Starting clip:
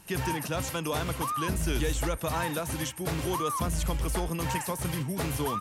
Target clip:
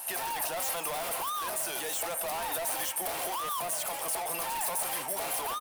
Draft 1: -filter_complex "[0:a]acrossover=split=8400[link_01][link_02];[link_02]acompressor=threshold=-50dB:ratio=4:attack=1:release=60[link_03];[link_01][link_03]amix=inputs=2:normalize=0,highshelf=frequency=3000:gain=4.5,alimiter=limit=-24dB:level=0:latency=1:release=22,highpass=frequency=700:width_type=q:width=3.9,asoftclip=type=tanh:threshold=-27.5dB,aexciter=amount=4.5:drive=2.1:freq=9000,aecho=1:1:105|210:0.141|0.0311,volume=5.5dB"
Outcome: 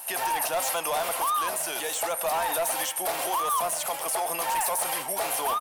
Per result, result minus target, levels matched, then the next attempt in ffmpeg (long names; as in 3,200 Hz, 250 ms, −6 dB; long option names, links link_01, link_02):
echo 65 ms early; soft clipping: distortion −9 dB
-filter_complex "[0:a]acrossover=split=8400[link_01][link_02];[link_02]acompressor=threshold=-50dB:ratio=4:attack=1:release=60[link_03];[link_01][link_03]amix=inputs=2:normalize=0,highshelf=frequency=3000:gain=4.5,alimiter=limit=-24dB:level=0:latency=1:release=22,highpass=frequency=700:width_type=q:width=3.9,asoftclip=type=tanh:threshold=-27.5dB,aexciter=amount=4.5:drive=2.1:freq=9000,aecho=1:1:170|340:0.141|0.0311,volume=5.5dB"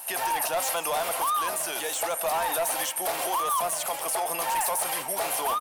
soft clipping: distortion −9 dB
-filter_complex "[0:a]acrossover=split=8400[link_01][link_02];[link_02]acompressor=threshold=-50dB:ratio=4:attack=1:release=60[link_03];[link_01][link_03]amix=inputs=2:normalize=0,highshelf=frequency=3000:gain=4.5,alimiter=limit=-24dB:level=0:latency=1:release=22,highpass=frequency=700:width_type=q:width=3.9,asoftclip=type=tanh:threshold=-38.5dB,aexciter=amount=4.5:drive=2.1:freq=9000,aecho=1:1:170|340:0.141|0.0311,volume=5.5dB"